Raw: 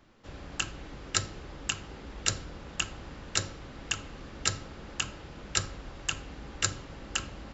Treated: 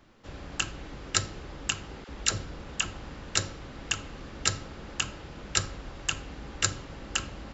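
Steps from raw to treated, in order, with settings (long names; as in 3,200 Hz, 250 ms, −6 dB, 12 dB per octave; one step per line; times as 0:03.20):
0:02.04–0:03.05: all-pass dispersion lows, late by 46 ms, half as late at 700 Hz
level +2 dB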